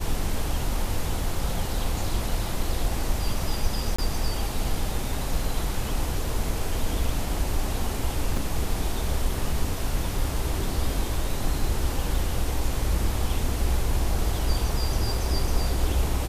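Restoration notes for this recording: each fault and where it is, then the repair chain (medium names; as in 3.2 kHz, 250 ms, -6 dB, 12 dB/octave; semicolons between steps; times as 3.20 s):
3.96–3.98 s: dropout 25 ms
8.37 s: dropout 2.6 ms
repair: interpolate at 3.96 s, 25 ms; interpolate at 8.37 s, 2.6 ms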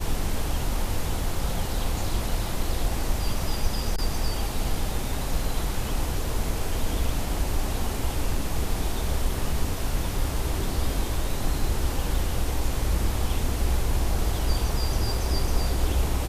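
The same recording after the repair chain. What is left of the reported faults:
nothing left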